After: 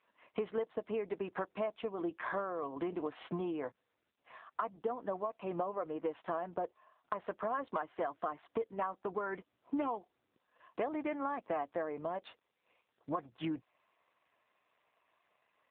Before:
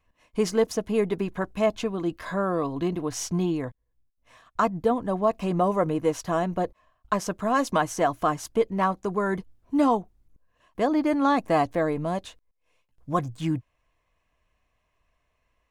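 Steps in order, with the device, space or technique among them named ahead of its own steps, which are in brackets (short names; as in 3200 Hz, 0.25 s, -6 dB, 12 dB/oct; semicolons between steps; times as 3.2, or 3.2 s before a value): 9.32–11.18 dynamic EQ 2500 Hz, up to +6 dB, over -47 dBFS, Q 1.5; voicemail (BPF 390–2800 Hz; compressor 8:1, threshold -37 dBFS, peak gain reduction 19 dB; gain +4 dB; AMR-NB 7.4 kbps 8000 Hz)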